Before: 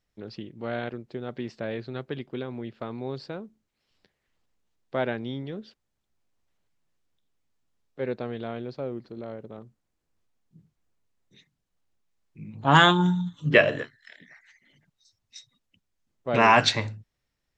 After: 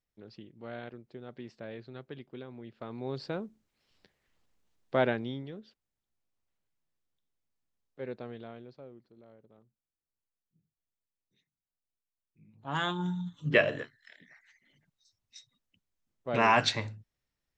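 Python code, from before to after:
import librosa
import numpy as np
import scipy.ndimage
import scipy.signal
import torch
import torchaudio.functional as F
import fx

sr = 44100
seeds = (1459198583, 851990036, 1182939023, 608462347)

y = fx.gain(x, sr, db=fx.line((2.63, -10.5), (3.33, 1.0), (5.05, 1.0), (5.6, -9.0), (8.31, -9.0), (9.05, -19.0), (12.61, -19.0), (13.29, -6.0)))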